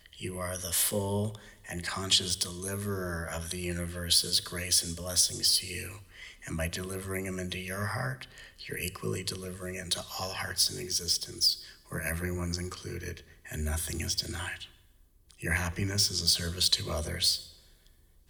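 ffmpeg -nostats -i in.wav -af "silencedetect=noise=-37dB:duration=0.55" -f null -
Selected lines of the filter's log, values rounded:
silence_start: 14.65
silence_end: 15.31 | silence_duration: 0.66
silence_start: 17.41
silence_end: 18.30 | silence_duration: 0.88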